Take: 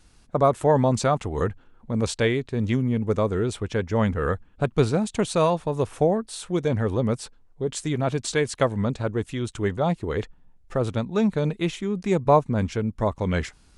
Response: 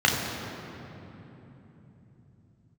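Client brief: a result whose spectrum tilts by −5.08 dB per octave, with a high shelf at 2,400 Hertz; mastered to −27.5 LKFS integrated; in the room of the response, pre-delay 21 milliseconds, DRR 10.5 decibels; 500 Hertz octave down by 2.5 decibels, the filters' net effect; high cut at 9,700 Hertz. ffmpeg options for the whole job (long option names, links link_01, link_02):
-filter_complex "[0:a]lowpass=9700,equalizer=frequency=500:width_type=o:gain=-3.5,highshelf=frequency=2400:gain=9,asplit=2[link_01][link_02];[1:a]atrim=start_sample=2205,adelay=21[link_03];[link_02][link_03]afir=irnorm=-1:irlink=0,volume=-28.5dB[link_04];[link_01][link_04]amix=inputs=2:normalize=0,volume=-3dB"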